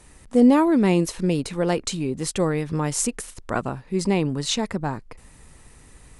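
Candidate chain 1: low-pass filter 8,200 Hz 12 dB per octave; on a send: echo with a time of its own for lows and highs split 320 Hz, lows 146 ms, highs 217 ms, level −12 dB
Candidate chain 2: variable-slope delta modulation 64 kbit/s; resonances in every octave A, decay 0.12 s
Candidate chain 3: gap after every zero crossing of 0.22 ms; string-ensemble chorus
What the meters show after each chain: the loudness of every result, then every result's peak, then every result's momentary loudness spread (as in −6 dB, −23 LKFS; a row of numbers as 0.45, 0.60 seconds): −22.5, −33.5, −27.0 LKFS; −5.5, −14.5, −7.0 dBFS; 12, 16, 13 LU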